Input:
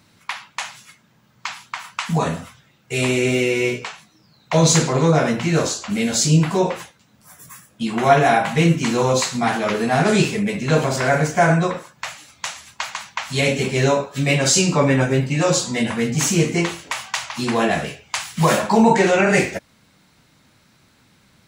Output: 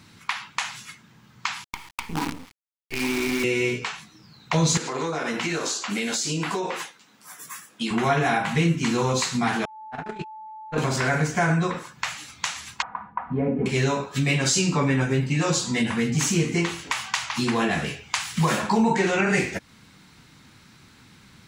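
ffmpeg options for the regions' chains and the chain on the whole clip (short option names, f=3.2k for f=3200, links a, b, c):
-filter_complex "[0:a]asettb=1/sr,asplit=3[a][b][c];[a]atrim=end=1.644[d];[b]atrim=start=1.64:end=3.44,asetpts=PTS-STARTPTS,afade=t=in:d=0.004:c=qsin,afade=t=out:st=1.796:d=0.004:c=qsin,asplit=3[e][f][g];[e]bandpass=f=300:t=q:w=8,volume=0dB[h];[f]bandpass=f=870:t=q:w=8,volume=-6dB[i];[g]bandpass=f=2.24k:t=q:w=8,volume=-9dB[j];[h][i][j]amix=inputs=3:normalize=0,acrusher=bits=6:dc=4:mix=0:aa=0.000001,acontrast=57[k];[c]atrim=start=3.436[l];[d][k]acrossfade=d=0.004:c1=hsin:c2=qsin[m];[m][l]acrossfade=d=0.004:c1=qsin:c2=hsin,asettb=1/sr,asplit=3[n][o][p];[n]atrim=end=4.774[q];[o]atrim=start=4.77:end=7.91,asetpts=PTS-STARTPTS,afade=t=in:d=0.004:c=qsin,afade=t=out:st=3.136:d=0.004:c=qsin,highpass=340,acompressor=threshold=-22dB:ratio=6:attack=3.2:release=140:knee=1:detection=peak[r];[p]atrim=start=7.906[s];[q][r]acrossfade=d=0.004:c1=hsin:c2=qsin[t];[t][s]acrossfade=d=0.004:c1=qsin:c2=hsin,asettb=1/sr,asplit=3[u][v][w];[u]atrim=end=9.654[x];[v]atrim=start=9.65:end=10.78,asetpts=PTS-STARTPTS,afade=t=in:d=0.004:c=qsin,afade=t=out:st=1.126:d=0.004:c=qsin,bass=f=250:g=-6,treble=f=4k:g=-15,agate=range=-57dB:threshold=-15dB:ratio=16:release=100:detection=peak,aeval=exprs='val(0)+0.01*sin(2*PI*870*n/s)':c=same[y];[w]atrim=start=10.776[z];[x][y]acrossfade=d=0.004:c1=hsin:c2=qsin[aa];[aa][z]acrossfade=d=0.004:c1=qsin:c2=hsin,asettb=1/sr,asplit=3[ab][ac][ad];[ab]atrim=end=12.824[ae];[ac]atrim=start=12.82:end=13.66,asetpts=PTS-STARTPTS,afade=t=in:d=0.004:c=qsin,afade=t=out:st=0.836:d=0.004:c=qsin,lowpass=f=1.1k:w=0.5412,lowpass=f=1.1k:w=1.3066,aecho=1:1:4.1:0.51,atrim=end_sample=37044[af];[ad]atrim=start=13.656[ag];[ae][af]acrossfade=d=0.004:c1=hsin:c2=qsin[ah];[ah][ag]acrossfade=d=0.004:c1=qsin:c2=hsin,equalizer=f=600:w=2.5:g=-9,acompressor=threshold=-31dB:ratio=2,highshelf=f=11k:g=-7,volume=5dB"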